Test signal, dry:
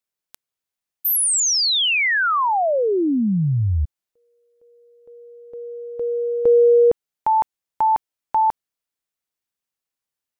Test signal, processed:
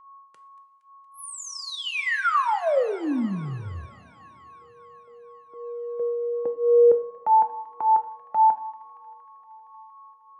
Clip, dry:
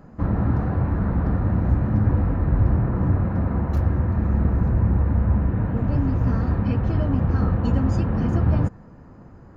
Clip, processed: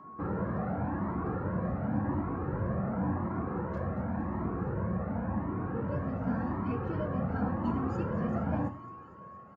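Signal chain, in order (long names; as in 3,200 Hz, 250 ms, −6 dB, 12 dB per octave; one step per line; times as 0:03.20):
high-pass filter 100 Hz 12 dB per octave
three-way crossover with the lows and the highs turned down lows −13 dB, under 160 Hz, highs −15 dB, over 2,200 Hz
downsampling to 22,050 Hz
steady tone 1,100 Hz −46 dBFS
on a send: delay with a high-pass on its return 233 ms, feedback 75%, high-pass 1,600 Hz, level −15.5 dB
on the sum: coupled-rooms reverb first 0.41 s, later 3.1 s, from −18 dB, DRR 7.5 dB
flanger whose copies keep moving one way rising 0.91 Hz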